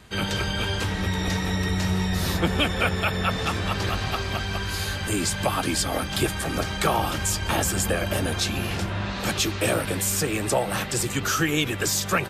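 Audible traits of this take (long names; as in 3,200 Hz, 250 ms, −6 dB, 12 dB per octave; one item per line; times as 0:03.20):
background noise floor −31 dBFS
spectral slope −4.5 dB per octave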